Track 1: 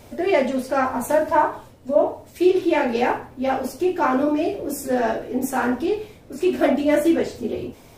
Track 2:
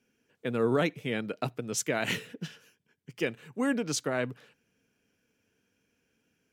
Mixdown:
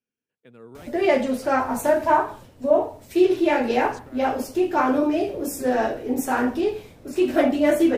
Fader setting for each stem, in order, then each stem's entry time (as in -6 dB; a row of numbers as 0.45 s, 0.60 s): -0.5 dB, -18.0 dB; 0.75 s, 0.00 s